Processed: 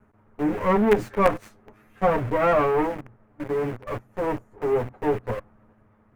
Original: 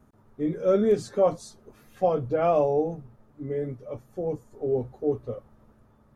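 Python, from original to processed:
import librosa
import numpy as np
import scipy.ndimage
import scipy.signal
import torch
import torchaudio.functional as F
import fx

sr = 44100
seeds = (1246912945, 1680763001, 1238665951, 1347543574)

p1 = fx.lower_of_two(x, sr, delay_ms=9.6)
p2 = fx.quant_companded(p1, sr, bits=2)
p3 = p1 + (p2 * 10.0 ** (-8.0 / 20.0))
p4 = fx.high_shelf_res(p3, sr, hz=3000.0, db=-10.5, q=1.5)
y = p4 * 10.0 ** (1.0 / 20.0)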